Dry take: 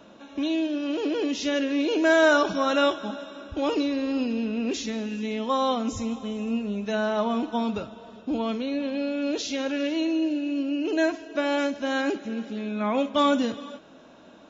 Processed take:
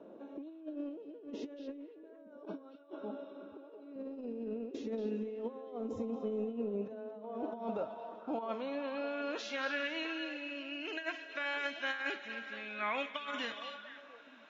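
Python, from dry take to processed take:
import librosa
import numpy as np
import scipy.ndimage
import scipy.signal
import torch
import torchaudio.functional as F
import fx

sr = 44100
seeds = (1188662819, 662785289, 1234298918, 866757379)

p1 = fx.filter_sweep_bandpass(x, sr, from_hz=420.0, to_hz=2000.0, start_s=6.66, end_s=10.36, q=2.1)
p2 = fx.over_compress(p1, sr, threshold_db=-37.0, ratio=-0.5)
p3 = fx.cabinet(p2, sr, low_hz=240.0, low_slope=12, high_hz=4800.0, hz=(330.0, 510.0, 730.0, 1100.0, 1700.0, 3300.0), db=(-6, -8, -7, -3, -9, -3), at=(2.45, 3.96))
p4 = p3 + fx.echo_stepped(p3, sr, ms=231, hz=3700.0, octaves=-1.4, feedback_pct=70, wet_db=-5.0, dry=0)
y = p4 * librosa.db_to_amplitude(-2.0)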